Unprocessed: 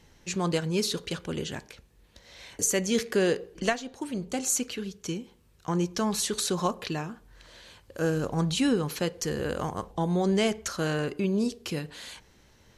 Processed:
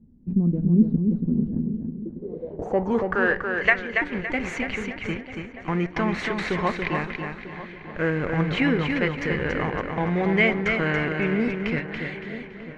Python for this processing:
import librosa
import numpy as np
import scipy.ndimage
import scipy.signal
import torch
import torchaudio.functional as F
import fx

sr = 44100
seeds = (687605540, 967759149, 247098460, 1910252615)

p1 = fx.weighting(x, sr, curve='A', at=(3.09, 3.98))
p2 = fx.schmitt(p1, sr, flips_db=-28.5)
p3 = p1 + (p2 * librosa.db_to_amplitude(-6.5))
p4 = fx.echo_filtered(p3, sr, ms=943, feedback_pct=56, hz=1400.0, wet_db=-14.0)
p5 = fx.filter_sweep_lowpass(p4, sr, from_hz=230.0, to_hz=2100.0, start_s=1.79, end_s=3.52, q=6.6)
y = fx.echo_feedback(p5, sr, ms=282, feedback_pct=35, wet_db=-5.0)